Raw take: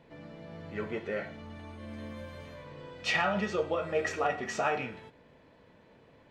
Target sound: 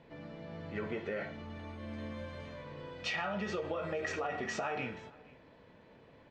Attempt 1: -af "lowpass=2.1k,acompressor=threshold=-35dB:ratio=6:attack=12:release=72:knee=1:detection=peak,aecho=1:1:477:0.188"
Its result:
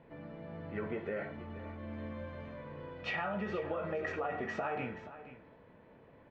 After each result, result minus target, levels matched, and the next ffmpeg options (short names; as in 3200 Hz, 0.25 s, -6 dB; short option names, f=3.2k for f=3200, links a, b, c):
8000 Hz band -15.0 dB; echo-to-direct +9 dB
-af "lowpass=6.1k,acompressor=threshold=-35dB:ratio=6:attack=12:release=72:knee=1:detection=peak,aecho=1:1:477:0.188"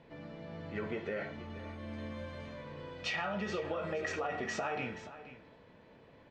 echo-to-direct +9 dB
-af "lowpass=6.1k,acompressor=threshold=-35dB:ratio=6:attack=12:release=72:knee=1:detection=peak,aecho=1:1:477:0.0668"